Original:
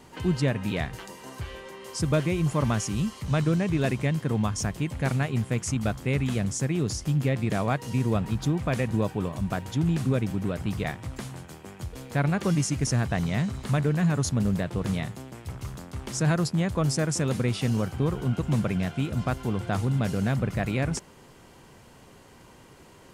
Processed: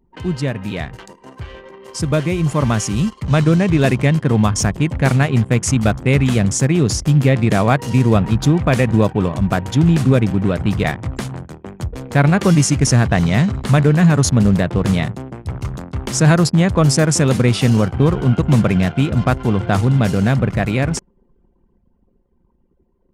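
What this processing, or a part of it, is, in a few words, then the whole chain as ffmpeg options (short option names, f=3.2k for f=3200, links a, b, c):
voice memo with heavy noise removal: -af "anlmdn=0.251,dynaudnorm=f=260:g=21:m=8dB,volume=4dB"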